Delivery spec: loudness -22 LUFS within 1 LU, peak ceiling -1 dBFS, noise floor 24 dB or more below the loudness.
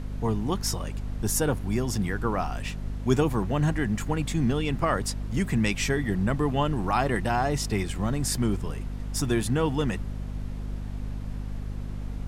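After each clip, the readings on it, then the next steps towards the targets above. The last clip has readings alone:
hum 50 Hz; highest harmonic 250 Hz; hum level -31 dBFS; noise floor -35 dBFS; noise floor target -52 dBFS; loudness -28.0 LUFS; peak level -8.5 dBFS; loudness target -22.0 LUFS
-> de-hum 50 Hz, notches 5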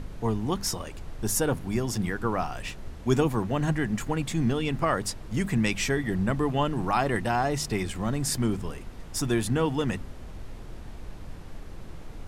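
hum not found; noise floor -42 dBFS; noise floor target -52 dBFS
-> noise print and reduce 10 dB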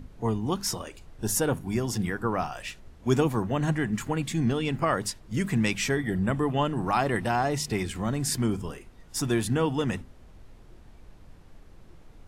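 noise floor -51 dBFS; noise floor target -52 dBFS
-> noise print and reduce 6 dB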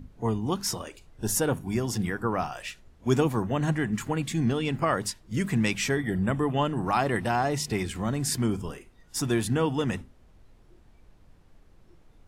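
noise floor -56 dBFS; loudness -28.0 LUFS; peak level -10.0 dBFS; loudness target -22.0 LUFS
-> trim +6 dB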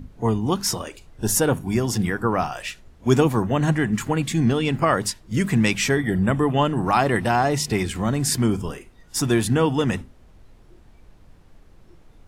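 loudness -22.0 LUFS; peak level -4.0 dBFS; noise floor -50 dBFS

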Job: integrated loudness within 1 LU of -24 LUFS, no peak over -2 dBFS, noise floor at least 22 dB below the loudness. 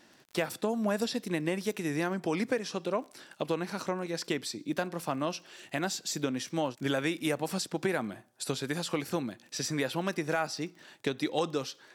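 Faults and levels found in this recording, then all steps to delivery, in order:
tick rate 22 per s; loudness -33.0 LUFS; peak level -17.5 dBFS; loudness target -24.0 LUFS
-> de-click; trim +9 dB

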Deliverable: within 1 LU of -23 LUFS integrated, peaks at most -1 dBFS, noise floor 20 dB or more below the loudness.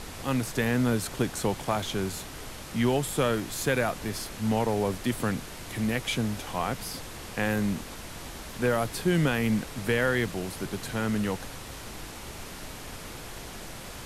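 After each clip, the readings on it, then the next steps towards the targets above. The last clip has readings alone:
noise floor -41 dBFS; noise floor target -49 dBFS; loudness -29.0 LUFS; peak level -11.5 dBFS; loudness target -23.0 LUFS
-> noise print and reduce 8 dB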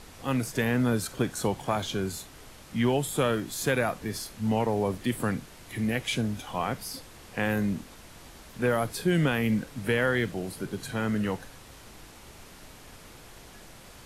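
noise floor -49 dBFS; loudness -29.0 LUFS; peak level -12.0 dBFS; loudness target -23.0 LUFS
-> trim +6 dB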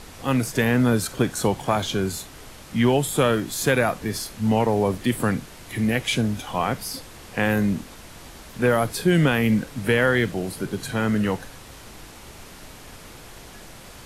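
loudness -23.0 LUFS; peak level -6.0 dBFS; noise floor -43 dBFS

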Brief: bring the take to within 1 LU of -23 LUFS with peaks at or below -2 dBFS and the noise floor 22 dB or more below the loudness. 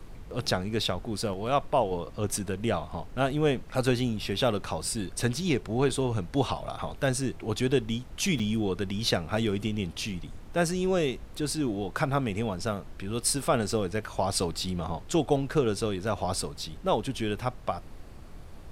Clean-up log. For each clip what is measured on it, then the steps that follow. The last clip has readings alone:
dropouts 2; longest dropout 5.5 ms; noise floor -45 dBFS; noise floor target -52 dBFS; loudness -29.5 LUFS; peak level -11.0 dBFS; loudness target -23.0 LUFS
-> interpolate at 5.89/8.39 s, 5.5 ms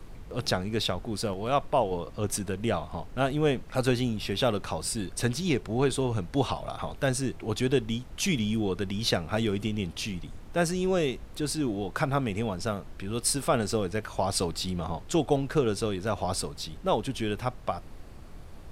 dropouts 0; noise floor -45 dBFS; noise floor target -52 dBFS
-> noise print and reduce 7 dB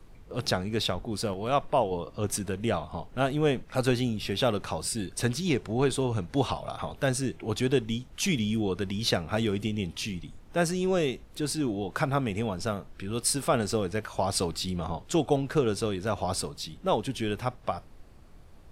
noise floor -51 dBFS; noise floor target -52 dBFS
-> noise print and reduce 6 dB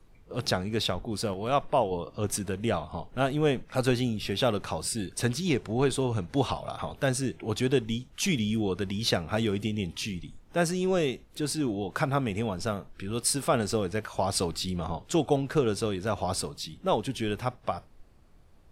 noise floor -55 dBFS; loudness -29.5 LUFS; peak level -11.0 dBFS; loudness target -23.0 LUFS
-> trim +6.5 dB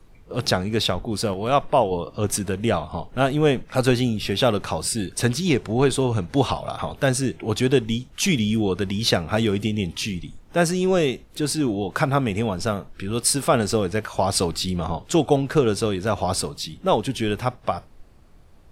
loudness -23.0 LUFS; peak level -4.5 dBFS; noise floor -49 dBFS

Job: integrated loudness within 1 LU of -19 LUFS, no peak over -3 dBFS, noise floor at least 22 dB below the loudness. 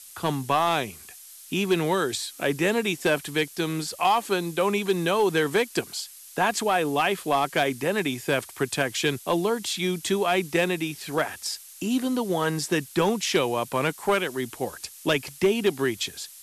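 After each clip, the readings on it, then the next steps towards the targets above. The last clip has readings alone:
clipped samples 0.4%; clipping level -14.0 dBFS; noise floor -46 dBFS; noise floor target -48 dBFS; loudness -25.5 LUFS; peak level -14.0 dBFS; loudness target -19.0 LUFS
-> clip repair -14 dBFS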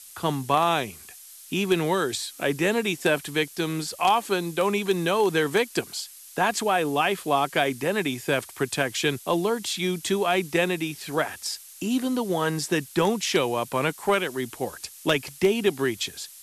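clipped samples 0.0%; noise floor -46 dBFS; noise floor target -48 dBFS
-> noise reduction 6 dB, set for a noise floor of -46 dBFS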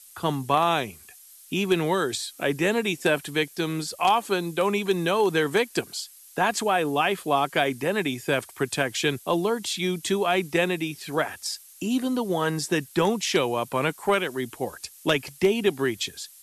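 noise floor -50 dBFS; loudness -25.5 LUFS; peak level -5.0 dBFS; loudness target -19.0 LUFS
-> trim +6.5 dB; peak limiter -3 dBFS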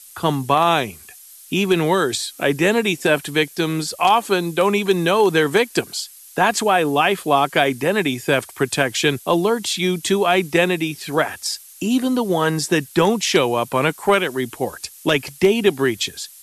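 loudness -19.0 LUFS; peak level -3.0 dBFS; noise floor -43 dBFS

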